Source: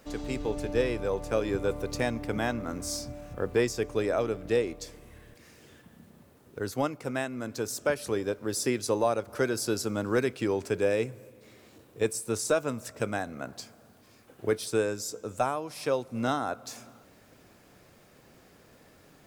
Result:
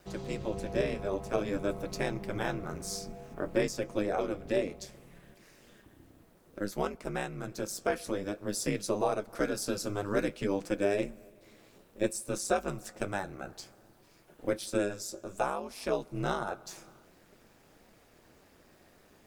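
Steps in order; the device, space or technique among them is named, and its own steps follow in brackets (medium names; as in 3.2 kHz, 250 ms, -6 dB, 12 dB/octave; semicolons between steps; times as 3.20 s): alien voice (ring modulator 100 Hz; flange 0.56 Hz, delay 5.4 ms, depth 7.7 ms, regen -54%); trim +3.5 dB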